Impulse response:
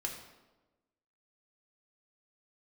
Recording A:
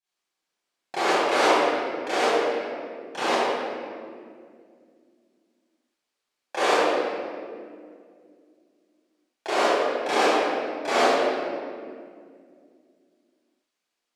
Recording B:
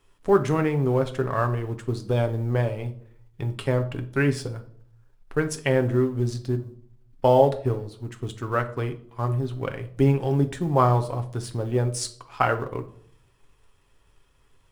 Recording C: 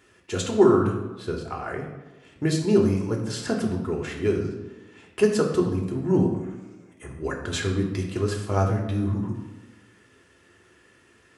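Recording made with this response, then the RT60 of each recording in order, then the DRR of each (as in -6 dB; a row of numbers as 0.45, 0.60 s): C; 2.2, 0.60, 1.2 s; -16.0, 6.5, -0.5 dB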